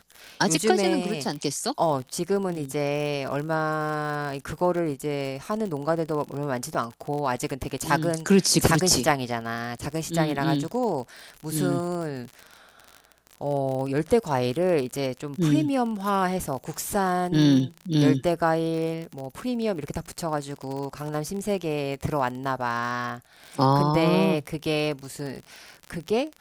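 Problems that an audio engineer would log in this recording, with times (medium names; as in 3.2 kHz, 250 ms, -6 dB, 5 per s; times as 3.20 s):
crackle 40 per s -30 dBFS
6.74–6.75 s: dropout 6.2 ms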